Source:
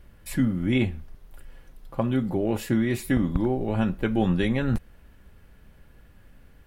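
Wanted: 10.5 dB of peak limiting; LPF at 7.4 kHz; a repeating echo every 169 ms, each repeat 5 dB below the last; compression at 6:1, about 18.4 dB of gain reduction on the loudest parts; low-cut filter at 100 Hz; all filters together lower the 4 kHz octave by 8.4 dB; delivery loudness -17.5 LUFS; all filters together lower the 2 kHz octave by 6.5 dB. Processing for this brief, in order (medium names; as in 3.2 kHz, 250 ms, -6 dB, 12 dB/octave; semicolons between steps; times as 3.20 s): high-pass 100 Hz; low-pass 7.4 kHz; peaking EQ 2 kHz -6 dB; peaking EQ 4 kHz -8.5 dB; compression 6:1, threshold -40 dBFS; peak limiter -35.5 dBFS; feedback delay 169 ms, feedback 56%, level -5 dB; trim +27 dB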